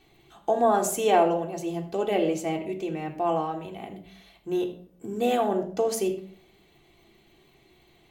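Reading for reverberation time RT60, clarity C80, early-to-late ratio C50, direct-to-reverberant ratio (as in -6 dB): 0.55 s, 12.5 dB, 10.5 dB, 1.5 dB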